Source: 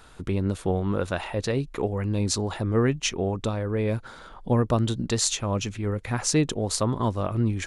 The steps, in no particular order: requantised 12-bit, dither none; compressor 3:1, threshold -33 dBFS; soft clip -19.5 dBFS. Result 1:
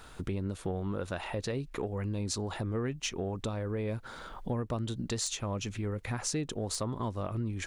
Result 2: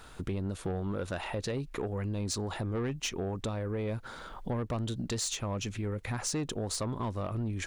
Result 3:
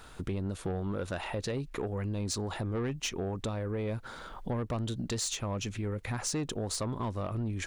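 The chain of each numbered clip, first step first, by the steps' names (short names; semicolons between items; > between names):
requantised > compressor > soft clip; soft clip > requantised > compressor; requantised > soft clip > compressor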